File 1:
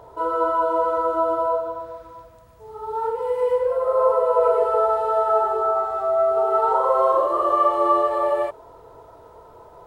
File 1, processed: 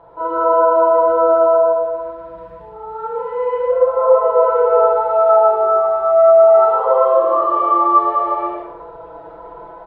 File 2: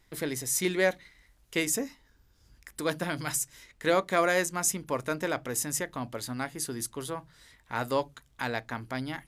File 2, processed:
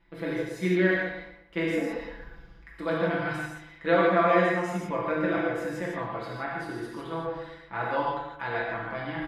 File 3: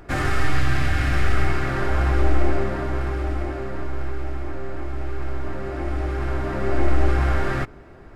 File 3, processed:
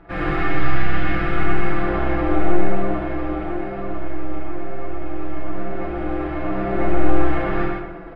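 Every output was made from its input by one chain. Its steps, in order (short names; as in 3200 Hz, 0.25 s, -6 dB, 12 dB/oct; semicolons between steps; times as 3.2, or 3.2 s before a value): low shelf 290 Hz -6 dB; comb 6 ms, depth 91%; reverse; upward compressor, threshold -30 dBFS; reverse; air absorption 410 m; on a send: darkening echo 0.117 s, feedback 39%, low-pass 2200 Hz, level -6.5 dB; on the sum: non-linear reverb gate 0.19 s flat, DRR -4 dB; gain -2 dB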